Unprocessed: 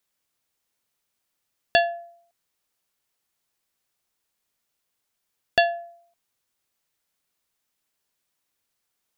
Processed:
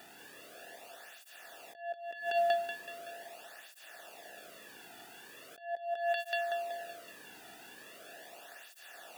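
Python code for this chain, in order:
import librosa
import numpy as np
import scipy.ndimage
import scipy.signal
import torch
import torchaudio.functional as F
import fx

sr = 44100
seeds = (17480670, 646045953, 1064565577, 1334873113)

y = fx.bin_compress(x, sr, power=0.6)
y = fx.low_shelf(y, sr, hz=130.0, db=-11.0)
y = fx.echo_thinned(y, sr, ms=188, feedback_pct=50, hz=250.0, wet_db=-3.5)
y = fx.over_compress(y, sr, threshold_db=-32.0, ratio=-0.5)
y = fx.peak_eq(y, sr, hz=4700.0, db=-8.0, octaves=1.3)
y = fx.flanger_cancel(y, sr, hz=0.4, depth_ms=1.9)
y = y * librosa.db_to_amplitude(4.0)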